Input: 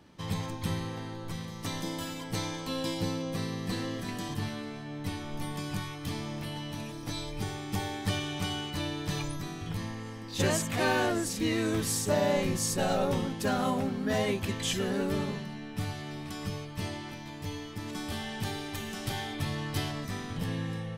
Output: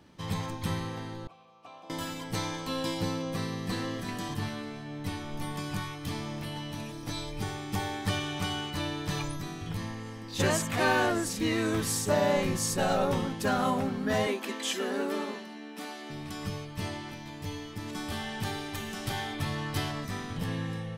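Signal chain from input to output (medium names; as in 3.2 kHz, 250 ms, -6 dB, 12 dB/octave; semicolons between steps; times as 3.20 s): 14.27–16.10 s: elliptic high-pass 230 Hz, stop band 50 dB; dynamic bell 1.2 kHz, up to +4 dB, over -44 dBFS, Q 1; 1.27–1.90 s: vowel filter a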